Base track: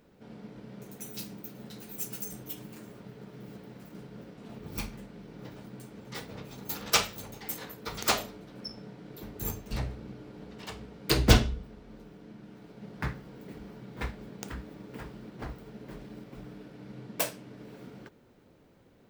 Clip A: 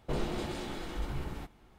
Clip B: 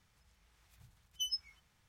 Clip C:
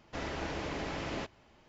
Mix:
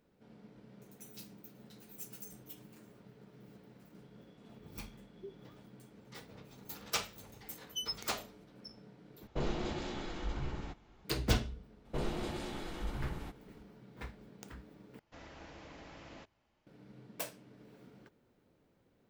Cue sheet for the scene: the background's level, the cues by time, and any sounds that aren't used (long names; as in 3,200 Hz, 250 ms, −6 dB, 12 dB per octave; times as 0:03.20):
base track −10.5 dB
0:04.03: mix in B −9 dB + voice inversion scrambler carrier 3,400 Hz
0:06.56: mix in B −1.5 dB
0:09.27: overwrite with A −2 dB + Butterworth low-pass 7,400 Hz 96 dB per octave
0:11.85: mix in A −3 dB
0:14.99: overwrite with C −14.5 dB + notch filter 400 Hz, Q 10